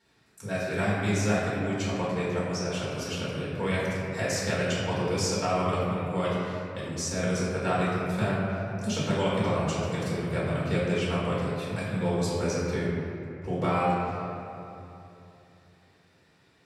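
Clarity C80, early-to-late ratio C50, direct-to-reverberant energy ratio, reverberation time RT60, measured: −0.5 dB, −2.0 dB, −8.5 dB, 2.9 s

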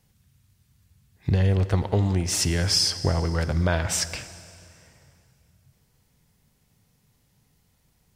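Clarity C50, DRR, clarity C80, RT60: 13.0 dB, 12.0 dB, 14.0 dB, 2.6 s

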